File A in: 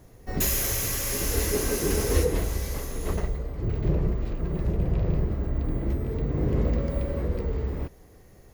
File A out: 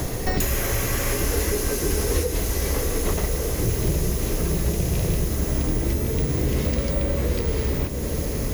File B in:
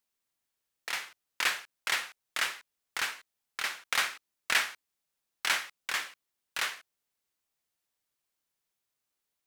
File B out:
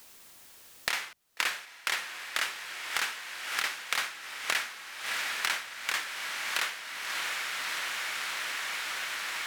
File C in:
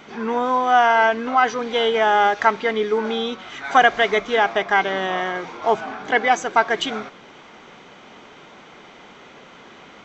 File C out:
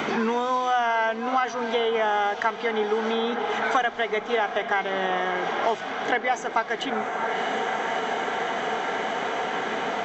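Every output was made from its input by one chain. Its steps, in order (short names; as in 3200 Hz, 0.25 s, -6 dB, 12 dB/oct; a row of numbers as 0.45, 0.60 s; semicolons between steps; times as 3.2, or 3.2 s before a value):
notches 50/100/150/200/250 Hz; on a send: diffused feedback echo 0.666 s, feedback 76%, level -14.5 dB; on the sum: three-band squash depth 100%; normalise peaks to -9 dBFS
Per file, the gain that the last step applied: +2.5, +1.5, -6.5 dB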